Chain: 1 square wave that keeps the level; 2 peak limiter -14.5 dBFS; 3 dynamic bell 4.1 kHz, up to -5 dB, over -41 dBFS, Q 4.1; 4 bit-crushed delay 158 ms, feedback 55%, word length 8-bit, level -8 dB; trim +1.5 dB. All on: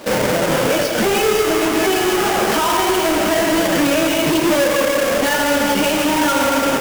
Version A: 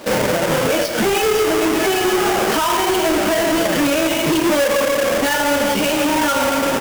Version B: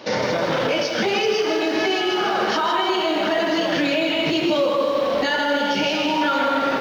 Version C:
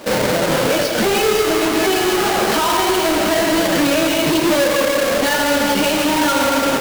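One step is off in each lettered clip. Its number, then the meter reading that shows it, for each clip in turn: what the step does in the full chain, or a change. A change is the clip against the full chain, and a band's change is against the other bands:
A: 4, crest factor change -3.0 dB; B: 1, distortion -5 dB; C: 3, 4 kHz band +1.5 dB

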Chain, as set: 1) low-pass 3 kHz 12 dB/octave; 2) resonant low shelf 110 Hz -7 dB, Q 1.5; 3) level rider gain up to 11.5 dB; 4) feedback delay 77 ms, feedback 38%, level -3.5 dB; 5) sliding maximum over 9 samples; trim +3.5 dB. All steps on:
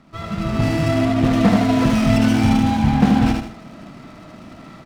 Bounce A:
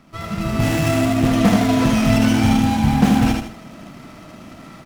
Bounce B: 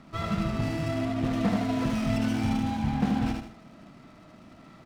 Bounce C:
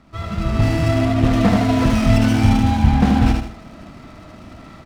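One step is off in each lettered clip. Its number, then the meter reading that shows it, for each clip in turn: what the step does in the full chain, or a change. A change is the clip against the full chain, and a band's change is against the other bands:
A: 1, 8 kHz band +5.5 dB; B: 3, momentary loudness spread change -5 LU; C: 2, 125 Hz band +3.0 dB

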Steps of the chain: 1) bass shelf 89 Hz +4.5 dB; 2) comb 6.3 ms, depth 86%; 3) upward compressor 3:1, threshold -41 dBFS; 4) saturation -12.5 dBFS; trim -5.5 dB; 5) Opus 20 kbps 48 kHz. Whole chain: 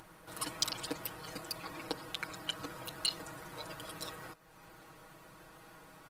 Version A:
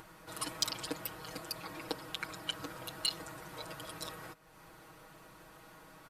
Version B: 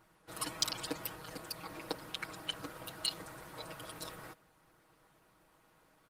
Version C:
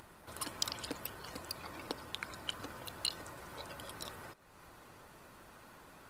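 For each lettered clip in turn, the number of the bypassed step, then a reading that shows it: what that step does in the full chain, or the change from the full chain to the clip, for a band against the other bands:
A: 5, crest factor change -2.0 dB; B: 3, momentary loudness spread change -7 LU; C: 2, momentary loudness spread change -2 LU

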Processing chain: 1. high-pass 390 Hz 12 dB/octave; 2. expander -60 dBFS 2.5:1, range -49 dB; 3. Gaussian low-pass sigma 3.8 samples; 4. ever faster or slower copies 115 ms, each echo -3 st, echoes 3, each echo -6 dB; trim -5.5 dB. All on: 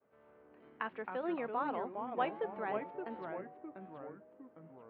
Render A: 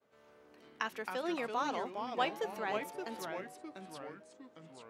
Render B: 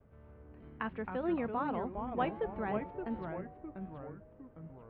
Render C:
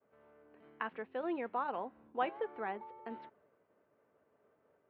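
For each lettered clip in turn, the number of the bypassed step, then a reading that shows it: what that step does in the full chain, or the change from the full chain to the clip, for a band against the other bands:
3, 4 kHz band +12.5 dB; 1, crest factor change -2.5 dB; 4, momentary loudness spread change -4 LU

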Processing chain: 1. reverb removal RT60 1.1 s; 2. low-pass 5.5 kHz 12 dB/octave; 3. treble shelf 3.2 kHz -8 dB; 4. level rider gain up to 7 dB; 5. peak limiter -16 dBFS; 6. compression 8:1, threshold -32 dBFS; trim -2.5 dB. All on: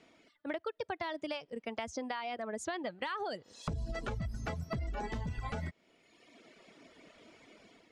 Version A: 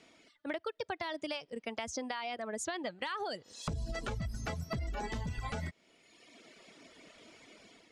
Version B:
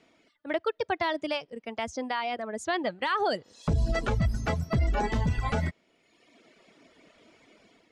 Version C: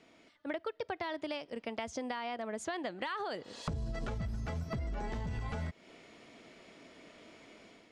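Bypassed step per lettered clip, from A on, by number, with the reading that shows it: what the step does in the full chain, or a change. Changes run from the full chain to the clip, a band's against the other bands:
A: 3, 8 kHz band +6.0 dB; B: 6, mean gain reduction 7.0 dB; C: 1, momentary loudness spread change -3 LU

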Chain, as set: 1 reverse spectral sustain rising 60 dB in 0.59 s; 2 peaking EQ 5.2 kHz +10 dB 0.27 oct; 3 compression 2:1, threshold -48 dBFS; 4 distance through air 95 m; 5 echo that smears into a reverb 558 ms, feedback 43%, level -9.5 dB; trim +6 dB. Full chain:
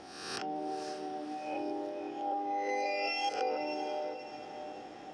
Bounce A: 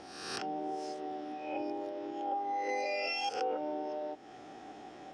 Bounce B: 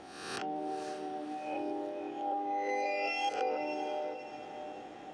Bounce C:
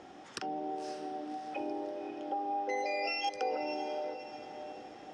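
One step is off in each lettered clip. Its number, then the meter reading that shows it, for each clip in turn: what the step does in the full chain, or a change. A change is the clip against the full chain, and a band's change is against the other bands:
5, echo-to-direct -8.5 dB to none; 2, 4 kHz band -3.0 dB; 1, 8 kHz band -2.5 dB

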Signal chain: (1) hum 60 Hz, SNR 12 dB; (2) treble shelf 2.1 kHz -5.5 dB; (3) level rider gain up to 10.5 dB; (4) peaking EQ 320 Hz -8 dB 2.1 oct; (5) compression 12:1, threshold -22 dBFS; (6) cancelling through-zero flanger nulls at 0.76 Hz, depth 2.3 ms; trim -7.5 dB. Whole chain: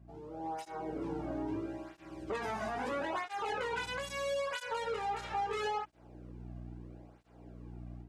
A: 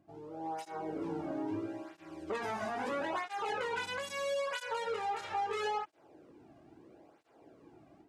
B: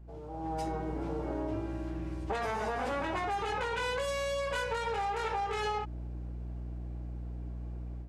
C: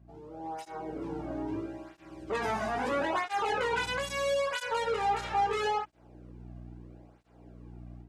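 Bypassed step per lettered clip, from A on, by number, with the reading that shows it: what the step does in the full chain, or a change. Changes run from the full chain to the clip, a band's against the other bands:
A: 1, 125 Hz band -6.5 dB; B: 6, 125 Hz band +5.5 dB; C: 5, mean gain reduction 3.0 dB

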